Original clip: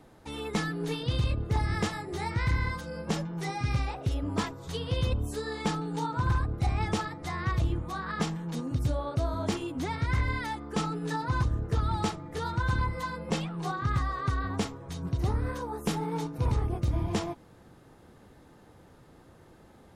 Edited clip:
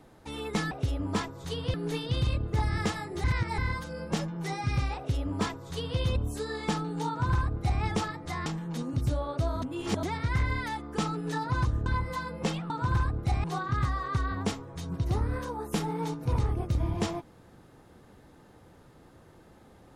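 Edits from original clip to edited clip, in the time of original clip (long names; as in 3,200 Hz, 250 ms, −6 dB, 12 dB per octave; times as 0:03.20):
0:02.21–0:02.55: reverse
0:03.94–0:04.97: duplicate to 0:00.71
0:06.05–0:06.79: duplicate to 0:13.57
0:07.43–0:08.24: remove
0:09.40–0:09.81: reverse
0:11.64–0:12.73: remove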